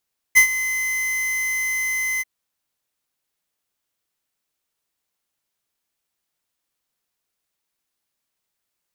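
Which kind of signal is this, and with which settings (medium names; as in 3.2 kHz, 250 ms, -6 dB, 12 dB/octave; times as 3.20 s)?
ADSR square 2.05 kHz, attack 24 ms, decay 94 ms, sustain -14 dB, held 1.86 s, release 28 ms -9.5 dBFS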